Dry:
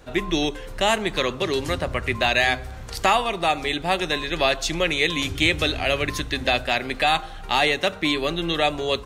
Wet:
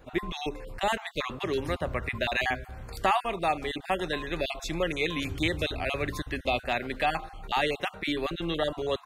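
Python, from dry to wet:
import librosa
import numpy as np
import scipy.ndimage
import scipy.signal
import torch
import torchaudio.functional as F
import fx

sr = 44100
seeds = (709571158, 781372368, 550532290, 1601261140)

y = fx.spec_dropout(x, sr, seeds[0], share_pct=24)
y = fx.peak_eq(y, sr, hz=5600.0, db=-8.0, octaves=1.8)
y = F.gain(torch.from_numpy(y), -4.5).numpy()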